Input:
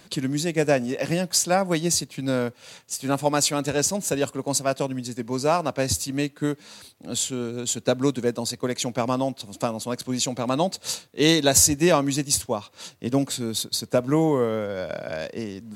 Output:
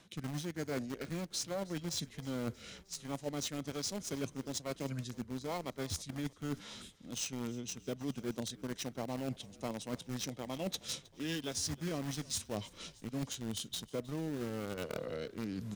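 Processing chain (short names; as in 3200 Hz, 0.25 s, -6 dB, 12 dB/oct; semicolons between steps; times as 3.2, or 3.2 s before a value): rotary speaker horn 1.2 Hz; in parallel at -6 dB: bit-crush 4-bit; on the sum: formant shift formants -3 st; reverse; compressor 8:1, threshold -36 dBFS, peak gain reduction 24.5 dB; reverse; frequency-shifting echo 0.314 s, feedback 63%, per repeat -50 Hz, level -21.5 dB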